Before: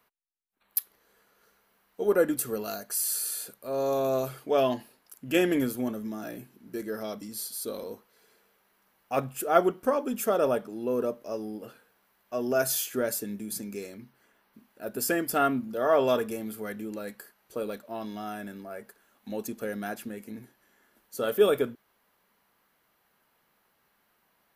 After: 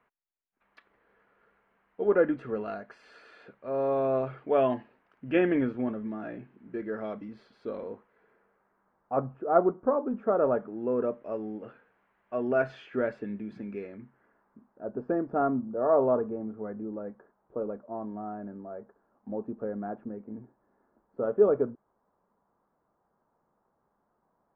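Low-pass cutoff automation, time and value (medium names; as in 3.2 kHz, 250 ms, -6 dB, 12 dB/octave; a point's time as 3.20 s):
low-pass 24 dB/octave
7.78 s 2.3 kHz
9.26 s 1.2 kHz
10.01 s 1.2 kHz
11.26 s 2.3 kHz
13.77 s 2.3 kHz
14.87 s 1.1 kHz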